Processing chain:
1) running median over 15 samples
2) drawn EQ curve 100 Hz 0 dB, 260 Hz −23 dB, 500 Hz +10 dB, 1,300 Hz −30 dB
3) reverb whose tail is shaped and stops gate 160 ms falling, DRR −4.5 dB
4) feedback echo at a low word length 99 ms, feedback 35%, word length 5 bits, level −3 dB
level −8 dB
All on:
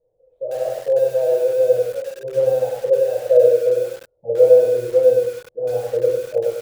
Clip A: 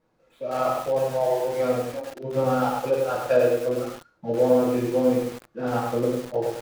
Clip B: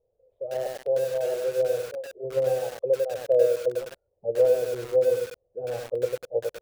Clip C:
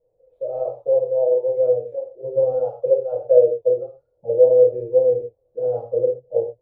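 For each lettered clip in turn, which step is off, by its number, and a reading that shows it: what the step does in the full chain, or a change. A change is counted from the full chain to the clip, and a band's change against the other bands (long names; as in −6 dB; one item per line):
2, change in momentary loudness spread −1 LU
3, change in integrated loudness −8.5 LU
4, change in momentary loudness spread +2 LU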